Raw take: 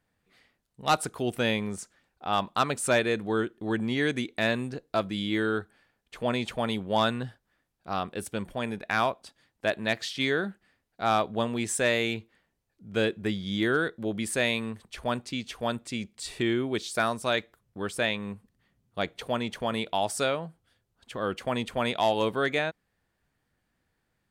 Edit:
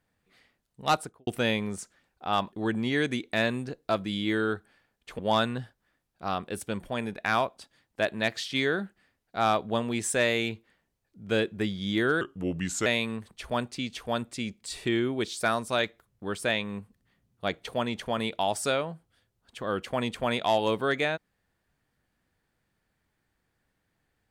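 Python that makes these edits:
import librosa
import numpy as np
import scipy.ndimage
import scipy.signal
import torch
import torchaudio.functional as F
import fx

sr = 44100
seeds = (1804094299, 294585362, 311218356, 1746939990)

y = fx.studio_fade_out(x, sr, start_s=0.87, length_s=0.4)
y = fx.edit(y, sr, fx.cut(start_s=2.52, length_s=1.05),
    fx.cut(start_s=6.24, length_s=0.6),
    fx.speed_span(start_s=13.86, length_s=0.54, speed=0.83), tone=tone)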